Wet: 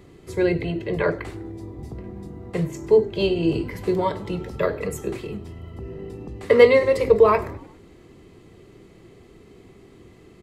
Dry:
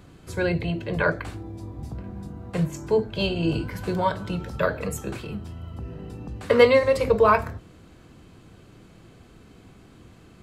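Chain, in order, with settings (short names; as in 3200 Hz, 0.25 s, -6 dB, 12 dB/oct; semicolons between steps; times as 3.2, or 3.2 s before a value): notch 1500 Hz, Q 8.8; small resonant body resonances 390/2000 Hz, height 11 dB, ringing for 30 ms; on a send: frequency-shifting echo 0.1 s, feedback 57%, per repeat -45 Hz, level -21.5 dB; on the sum: gain -1.5 dB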